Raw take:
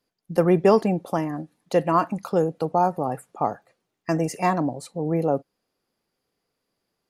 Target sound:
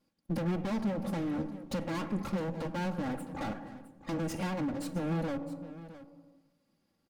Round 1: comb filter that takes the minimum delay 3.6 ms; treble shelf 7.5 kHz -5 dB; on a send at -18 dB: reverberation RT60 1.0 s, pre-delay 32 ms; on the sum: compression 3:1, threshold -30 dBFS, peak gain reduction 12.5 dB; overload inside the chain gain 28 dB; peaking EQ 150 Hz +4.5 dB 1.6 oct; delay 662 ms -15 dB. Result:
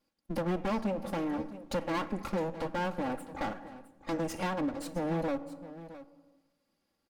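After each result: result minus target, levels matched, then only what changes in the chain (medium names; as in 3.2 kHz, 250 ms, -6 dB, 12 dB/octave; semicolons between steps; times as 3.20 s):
125 Hz band -4.5 dB; overload inside the chain: distortion -6 dB
change: peaking EQ 150 Hz +14.5 dB 1.6 oct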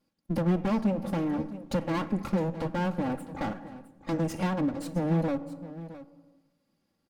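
overload inside the chain: distortion -6 dB
change: overload inside the chain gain 36 dB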